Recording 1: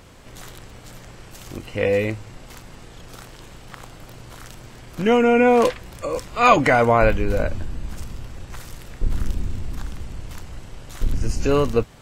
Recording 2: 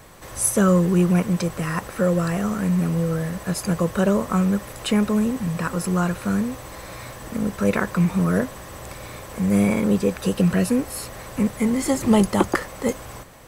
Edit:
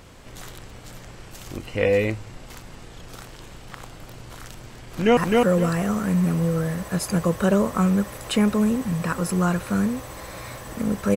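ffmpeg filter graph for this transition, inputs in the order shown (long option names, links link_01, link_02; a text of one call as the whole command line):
ffmpeg -i cue0.wav -i cue1.wav -filter_complex "[0:a]apad=whole_dur=11.16,atrim=end=11.16,atrim=end=5.172[link_01];[1:a]atrim=start=1.718:end=7.71[link_02];[link_01][link_02]acrossfade=duration=0.004:curve1=hsin:curve2=hsin,asplit=2[link_03][link_04];[link_04]afade=type=in:start_time=4.65:duration=0.01,afade=type=out:start_time=5.17:duration=0.01,aecho=0:1:260|520|780:0.841395|0.168279|0.0336558[link_05];[link_03][link_05]amix=inputs=2:normalize=0" out.wav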